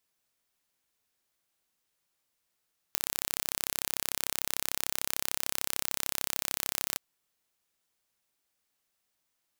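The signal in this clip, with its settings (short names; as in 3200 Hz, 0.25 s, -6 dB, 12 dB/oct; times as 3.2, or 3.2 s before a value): pulse train 33.4/s, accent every 0, -3 dBFS 4.03 s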